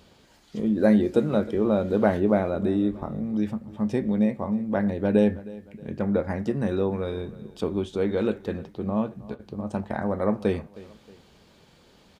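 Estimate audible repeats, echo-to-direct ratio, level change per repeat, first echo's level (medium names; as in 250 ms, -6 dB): 2, -18.5 dB, -7.0 dB, -19.5 dB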